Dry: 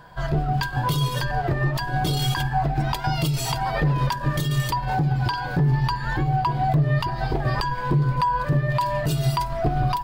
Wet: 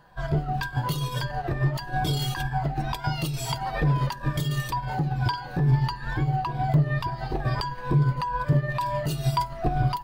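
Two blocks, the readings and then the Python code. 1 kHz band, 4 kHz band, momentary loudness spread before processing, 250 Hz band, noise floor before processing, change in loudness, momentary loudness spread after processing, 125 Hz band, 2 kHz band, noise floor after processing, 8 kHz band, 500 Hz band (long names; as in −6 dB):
−4.5 dB, −4.0 dB, 3 LU, −2.5 dB, −30 dBFS, −3.5 dB, 6 LU, −2.5 dB, −4.5 dB, −38 dBFS, −4.5 dB, −4.0 dB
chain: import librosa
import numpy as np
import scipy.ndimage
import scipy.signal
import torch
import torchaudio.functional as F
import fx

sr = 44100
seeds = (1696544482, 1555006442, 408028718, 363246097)

y = fx.spec_ripple(x, sr, per_octave=1.7, drift_hz=-2.2, depth_db=7)
y = fx.upward_expand(y, sr, threshold_db=-29.0, expansion=1.5)
y = y * 10.0 ** (-1.0 / 20.0)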